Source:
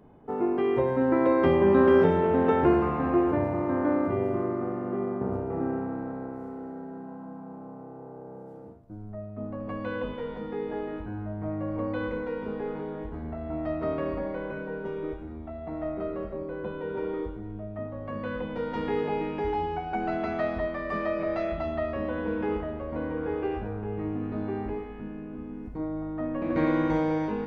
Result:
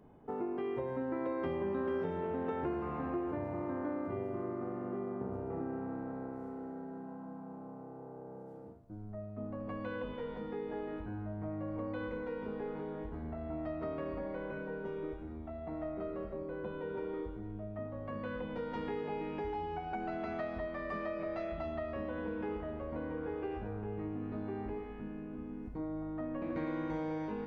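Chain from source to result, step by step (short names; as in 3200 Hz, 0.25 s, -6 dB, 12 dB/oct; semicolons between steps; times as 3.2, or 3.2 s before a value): compressor 3:1, threshold -31 dBFS, peak gain reduction 11.5 dB; gain -5 dB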